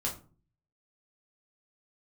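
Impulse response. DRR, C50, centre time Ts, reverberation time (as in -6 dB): -3.0 dB, 10.0 dB, 20 ms, 0.40 s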